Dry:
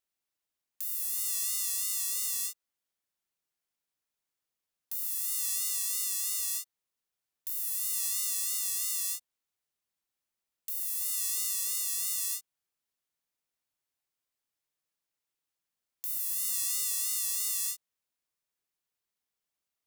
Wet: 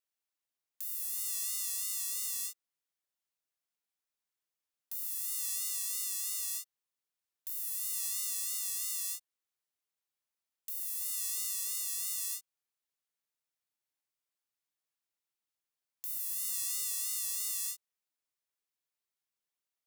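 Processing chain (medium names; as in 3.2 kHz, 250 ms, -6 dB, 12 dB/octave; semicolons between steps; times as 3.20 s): bass shelf 310 Hz -6 dB; trim -4 dB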